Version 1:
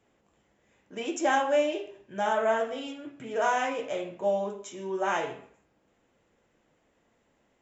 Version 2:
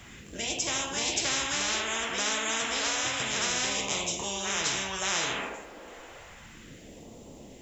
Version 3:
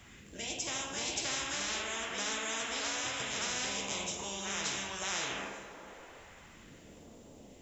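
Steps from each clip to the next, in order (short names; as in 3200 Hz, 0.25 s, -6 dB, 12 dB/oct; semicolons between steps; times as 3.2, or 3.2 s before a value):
reverse echo 0.576 s -6.5 dB; phaser stages 2, 0.31 Hz, lowest notch 110–1600 Hz; spectral compressor 10:1
plate-style reverb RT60 3.8 s, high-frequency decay 0.5×, DRR 8 dB; gain -7 dB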